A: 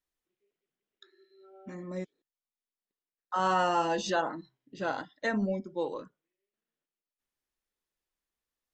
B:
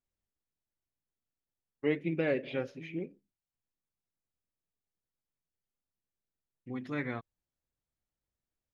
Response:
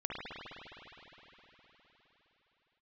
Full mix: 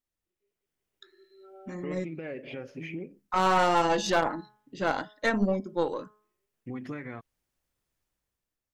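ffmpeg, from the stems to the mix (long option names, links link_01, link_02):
-filter_complex "[0:a]bandreject=frequency=211.3:width_type=h:width=4,bandreject=frequency=422.6:width_type=h:width=4,bandreject=frequency=633.9:width_type=h:width=4,bandreject=frequency=845.2:width_type=h:width=4,bandreject=frequency=1056.5:width_type=h:width=4,bandreject=frequency=1267.8:width_type=h:width=4,bandreject=frequency=1479.1:width_type=h:width=4,bandreject=frequency=1690.4:width_type=h:width=4,aeval=exprs='0.158*(cos(1*acos(clip(val(0)/0.158,-1,1)))-cos(1*PI/2))+0.0447*(cos(2*acos(clip(val(0)/0.158,-1,1)))-cos(2*PI/2))+0.00562*(cos(4*acos(clip(val(0)/0.158,-1,1)))-cos(4*PI/2))+0.0141*(cos(6*acos(clip(val(0)/0.158,-1,1)))-cos(6*PI/2))+0.00708*(cos(8*acos(clip(val(0)/0.158,-1,1)))-cos(8*PI/2))':channel_layout=same,volume=-5dB[link_01];[1:a]equalizer=frequency=3800:width=4.6:gain=-11.5,acompressor=threshold=-39dB:ratio=6,alimiter=level_in=11dB:limit=-24dB:level=0:latency=1:release=99,volume=-11dB,volume=-2dB[link_02];[link_01][link_02]amix=inputs=2:normalize=0,dynaudnorm=framelen=200:gausssize=7:maxgain=9dB,volume=13.5dB,asoftclip=hard,volume=-13.5dB"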